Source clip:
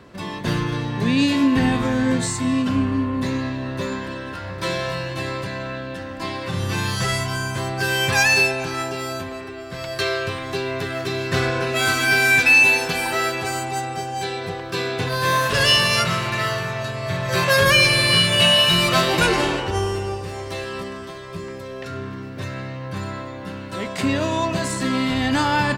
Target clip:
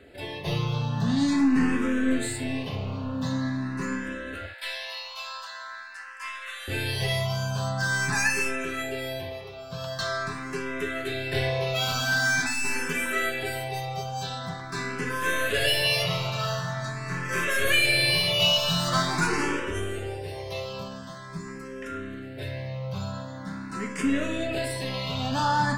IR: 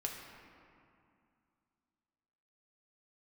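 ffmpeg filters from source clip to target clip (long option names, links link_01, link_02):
-filter_complex "[0:a]asettb=1/sr,asplit=3[link_01][link_02][link_03];[link_01]atrim=end=4.464[link_04];[link_02]atrim=start=4.46:end=6.68,asetpts=PTS-STARTPTS,afade=type=in:duration=0.004:curve=qsin,afade=type=out:start_time=2.216:duration=0.004:curve=qsin,highpass=frequency=930:width=0.5412,highpass=frequency=930:width=1.3066[link_05];[link_03]atrim=start=6.676[link_06];[link_04][link_05]acrossfade=duration=0.004:curve1=hsin:curve2=qsin[link_07];[link_07][link_06]acrossfade=duration=0.004:curve1=qsin:curve2=hsin,aeval=exprs='(tanh(5.62*val(0)+0.2)-tanh(0.2))/5.62':channel_layout=same[link_08];[1:a]atrim=start_sample=2205,atrim=end_sample=3528[link_09];[link_08][link_09]afir=irnorm=-1:irlink=0,asplit=2[link_10][link_11];[link_11]afreqshift=0.45[link_12];[link_10][link_12]amix=inputs=2:normalize=1"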